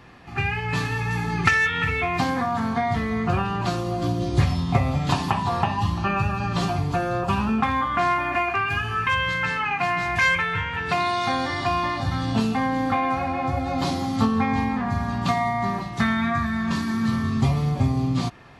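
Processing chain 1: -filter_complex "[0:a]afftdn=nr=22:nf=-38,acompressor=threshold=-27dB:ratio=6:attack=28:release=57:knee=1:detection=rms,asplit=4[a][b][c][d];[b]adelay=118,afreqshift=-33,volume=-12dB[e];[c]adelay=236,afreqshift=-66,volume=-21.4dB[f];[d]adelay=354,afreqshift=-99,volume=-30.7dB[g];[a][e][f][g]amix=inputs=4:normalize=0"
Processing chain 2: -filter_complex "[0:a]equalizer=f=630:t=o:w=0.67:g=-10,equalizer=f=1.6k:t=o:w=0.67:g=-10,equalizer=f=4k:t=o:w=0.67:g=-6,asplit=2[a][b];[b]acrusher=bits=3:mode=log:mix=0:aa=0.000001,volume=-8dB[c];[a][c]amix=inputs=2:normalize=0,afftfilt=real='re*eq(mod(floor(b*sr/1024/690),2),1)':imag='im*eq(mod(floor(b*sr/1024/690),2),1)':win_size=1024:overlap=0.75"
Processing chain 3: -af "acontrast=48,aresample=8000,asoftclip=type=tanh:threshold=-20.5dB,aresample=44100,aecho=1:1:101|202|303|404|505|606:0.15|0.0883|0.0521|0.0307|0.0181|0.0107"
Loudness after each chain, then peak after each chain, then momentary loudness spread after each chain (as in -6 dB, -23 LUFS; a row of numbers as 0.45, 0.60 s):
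-27.5, -30.0, -23.5 LUFS; -12.0, -10.5, -15.5 dBFS; 2, 11, 3 LU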